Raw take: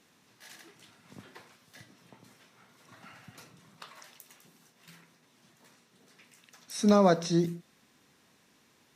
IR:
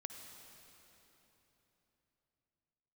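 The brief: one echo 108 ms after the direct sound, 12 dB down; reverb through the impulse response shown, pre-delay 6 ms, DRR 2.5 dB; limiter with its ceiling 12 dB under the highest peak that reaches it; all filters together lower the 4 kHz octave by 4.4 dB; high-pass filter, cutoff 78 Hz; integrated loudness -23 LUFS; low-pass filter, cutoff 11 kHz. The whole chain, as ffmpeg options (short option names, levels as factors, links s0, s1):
-filter_complex "[0:a]highpass=78,lowpass=11000,equalizer=f=4000:t=o:g=-5.5,alimiter=limit=0.0631:level=0:latency=1,aecho=1:1:108:0.251,asplit=2[s0][s1];[1:a]atrim=start_sample=2205,adelay=6[s2];[s1][s2]afir=irnorm=-1:irlink=0,volume=1.12[s3];[s0][s3]amix=inputs=2:normalize=0,volume=2.82"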